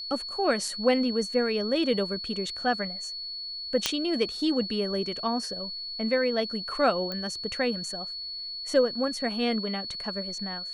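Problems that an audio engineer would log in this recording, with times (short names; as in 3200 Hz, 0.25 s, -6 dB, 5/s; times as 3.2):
tone 4400 Hz -34 dBFS
3.86 pop -7 dBFS
7.12 pop -20 dBFS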